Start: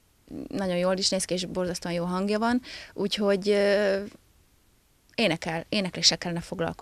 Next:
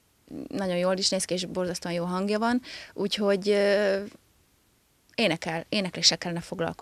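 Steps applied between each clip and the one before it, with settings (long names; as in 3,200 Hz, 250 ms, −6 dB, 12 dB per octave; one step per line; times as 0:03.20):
high-pass filter 93 Hz 6 dB per octave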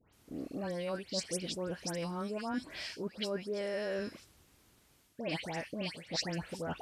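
reversed playback
downward compressor 5 to 1, threshold −34 dBFS, peak gain reduction 17.5 dB
reversed playback
all-pass dispersion highs, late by 132 ms, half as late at 2,100 Hz
level −1 dB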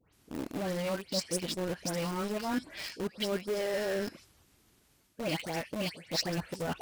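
spectral magnitudes quantised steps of 15 dB
in parallel at −4.5 dB: bit-depth reduction 6 bits, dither none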